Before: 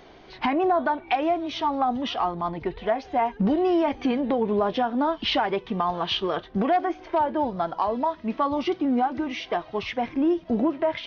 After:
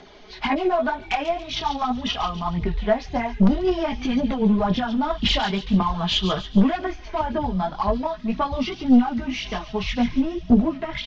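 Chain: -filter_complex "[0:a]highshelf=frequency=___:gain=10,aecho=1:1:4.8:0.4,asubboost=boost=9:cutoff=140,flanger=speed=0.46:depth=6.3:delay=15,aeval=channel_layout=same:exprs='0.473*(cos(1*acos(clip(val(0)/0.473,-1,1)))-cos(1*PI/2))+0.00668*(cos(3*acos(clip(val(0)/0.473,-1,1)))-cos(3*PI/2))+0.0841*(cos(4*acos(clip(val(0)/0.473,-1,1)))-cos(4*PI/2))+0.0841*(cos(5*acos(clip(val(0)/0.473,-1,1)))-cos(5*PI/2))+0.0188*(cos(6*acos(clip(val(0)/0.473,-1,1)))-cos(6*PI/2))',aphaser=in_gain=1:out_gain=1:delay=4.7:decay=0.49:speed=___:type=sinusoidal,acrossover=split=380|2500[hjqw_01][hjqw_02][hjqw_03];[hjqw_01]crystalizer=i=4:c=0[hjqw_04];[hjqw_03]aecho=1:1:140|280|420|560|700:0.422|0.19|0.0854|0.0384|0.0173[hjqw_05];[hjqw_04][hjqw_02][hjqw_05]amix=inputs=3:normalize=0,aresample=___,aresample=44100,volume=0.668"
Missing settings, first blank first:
3700, 1.9, 16000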